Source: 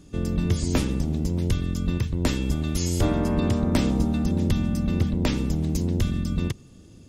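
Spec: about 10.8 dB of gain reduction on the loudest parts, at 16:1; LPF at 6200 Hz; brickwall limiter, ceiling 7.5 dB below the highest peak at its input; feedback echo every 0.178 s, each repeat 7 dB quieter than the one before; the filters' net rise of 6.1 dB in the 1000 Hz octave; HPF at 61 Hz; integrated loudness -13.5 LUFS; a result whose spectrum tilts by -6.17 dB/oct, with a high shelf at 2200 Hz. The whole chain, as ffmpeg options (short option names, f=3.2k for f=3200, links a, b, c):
-af "highpass=61,lowpass=6.2k,equalizer=f=1k:t=o:g=6.5,highshelf=f=2.2k:g=6,acompressor=threshold=-27dB:ratio=16,alimiter=level_in=0.5dB:limit=-24dB:level=0:latency=1,volume=-0.5dB,aecho=1:1:178|356|534|712|890:0.447|0.201|0.0905|0.0407|0.0183,volume=20.5dB"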